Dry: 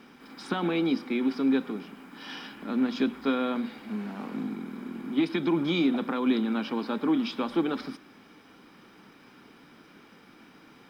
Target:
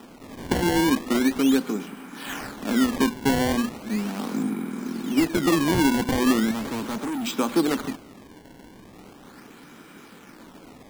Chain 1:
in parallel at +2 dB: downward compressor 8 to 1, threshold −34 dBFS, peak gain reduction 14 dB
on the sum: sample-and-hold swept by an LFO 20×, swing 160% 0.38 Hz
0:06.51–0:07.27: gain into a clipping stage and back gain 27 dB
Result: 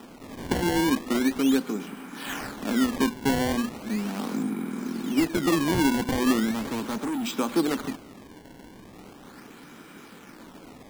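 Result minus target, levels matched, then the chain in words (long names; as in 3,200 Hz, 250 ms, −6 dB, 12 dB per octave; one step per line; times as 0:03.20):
downward compressor: peak gain reduction +7 dB
in parallel at +2 dB: downward compressor 8 to 1, threshold −26 dBFS, peak gain reduction 7 dB
on the sum: sample-and-hold swept by an LFO 20×, swing 160% 0.38 Hz
0:06.51–0:07.27: gain into a clipping stage and back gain 27 dB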